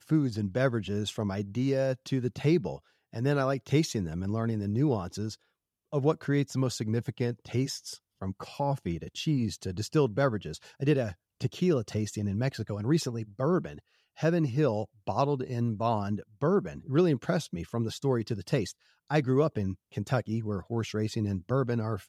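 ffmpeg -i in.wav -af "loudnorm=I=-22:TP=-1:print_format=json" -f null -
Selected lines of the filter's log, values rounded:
"input_i" : "-30.2",
"input_tp" : "-12.1",
"input_lra" : "2.0",
"input_thresh" : "-40.4",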